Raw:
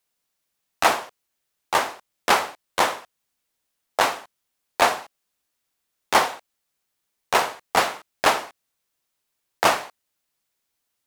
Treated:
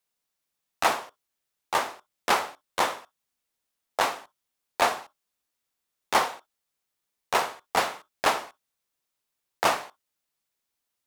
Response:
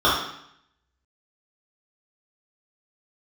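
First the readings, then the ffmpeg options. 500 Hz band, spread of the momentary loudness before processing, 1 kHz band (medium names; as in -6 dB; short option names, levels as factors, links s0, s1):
-5.0 dB, 12 LU, -4.5 dB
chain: -filter_complex "[0:a]asplit=2[s0][s1];[1:a]atrim=start_sample=2205,atrim=end_sample=3087[s2];[s1][s2]afir=irnorm=-1:irlink=0,volume=0.0141[s3];[s0][s3]amix=inputs=2:normalize=0,volume=0.562"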